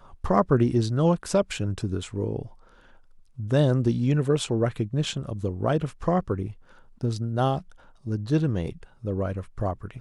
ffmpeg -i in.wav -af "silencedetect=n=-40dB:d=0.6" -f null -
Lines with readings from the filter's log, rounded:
silence_start: 2.47
silence_end: 3.38 | silence_duration: 0.91